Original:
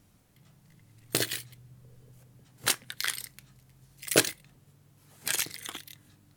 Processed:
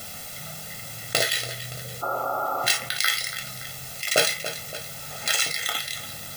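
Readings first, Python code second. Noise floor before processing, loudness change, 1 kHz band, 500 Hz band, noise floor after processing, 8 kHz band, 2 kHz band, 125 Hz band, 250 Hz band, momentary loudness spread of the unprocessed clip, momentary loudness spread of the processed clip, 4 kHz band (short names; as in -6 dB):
-63 dBFS, +4.0 dB, +13.5 dB, +6.0 dB, -38 dBFS, +4.0 dB, +8.5 dB, +5.5 dB, -3.0 dB, 20 LU, 13 LU, +8.5 dB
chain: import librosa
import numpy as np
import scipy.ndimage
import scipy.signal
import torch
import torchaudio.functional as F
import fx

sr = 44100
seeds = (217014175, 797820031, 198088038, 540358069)

p1 = scipy.signal.sosfilt(scipy.signal.butter(2, 110.0, 'highpass', fs=sr, output='sos'), x)
p2 = fx.spec_repair(p1, sr, seeds[0], start_s=2.05, length_s=0.63, low_hz=270.0, high_hz=1400.0, source='after')
p3 = fx.low_shelf(p2, sr, hz=250.0, db=-10.0)
p4 = np.repeat(scipy.signal.resample_poly(p3, 1, 3), 3)[:len(p3)]
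p5 = p4 + fx.echo_feedback(p4, sr, ms=285, feedback_pct=37, wet_db=-23.0, dry=0)
p6 = fx.rev_gated(p5, sr, seeds[1], gate_ms=80, shape='falling', drr_db=2.5)
p7 = fx.quant_dither(p6, sr, seeds[2], bits=8, dither='triangular')
p8 = p6 + F.gain(torch.from_numpy(p7), -11.5).numpy()
p9 = fx.notch(p8, sr, hz=1100.0, q=9.9)
p10 = p9 + 0.85 * np.pad(p9, (int(1.5 * sr / 1000.0), 0))[:len(p9)]
p11 = fx.env_flatten(p10, sr, amount_pct=50)
y = F.gain(torch.from_numpy(p11), -2.0).numpy()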